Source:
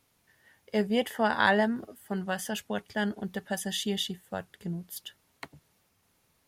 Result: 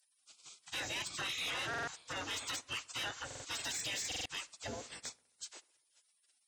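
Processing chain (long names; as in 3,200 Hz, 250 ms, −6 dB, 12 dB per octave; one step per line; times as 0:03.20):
hearing-aid frequency compression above 2,400 Hz 1.5 to 1
gate on every frequency bin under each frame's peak −25 dB weak
high-pass filter 60 Hz
high-shelf EQ 2,900 Hz +8 dB
brickwall limiter −41 dBFS, peak gain reduction 12.5 dB
sine wavefolder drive 4 dB, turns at −41 dBFS
feedback echo with a low-pass in the loop 66 ms, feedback 59%, low-pass 2,700 Hz, level −21 dB
buffer that repeats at 0:01.69/0:03.26/0:04.07, samples 2,048, times 3
level +6.5 dB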